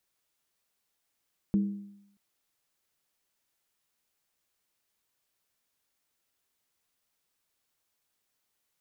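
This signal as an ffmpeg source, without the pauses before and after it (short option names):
-f lavfi -i "aevalsrc='0.1*pow(10,-3*t/0.79)*sin(2*PI*201*t)+0.0251*pow(10,-3*t/0.626)*sin(2*PI*320.4*t)+0.00631*pow(10,-3*t/0.541)*sin(2*PI*429.3*t)+0.00158*pow(10,-3*t/0.521)*sin(2*PI*461.5*t)+0.000398*pow(10,-3*t/0.485)*sin(2*PI*533.3*t)':d=0.63:s=44100"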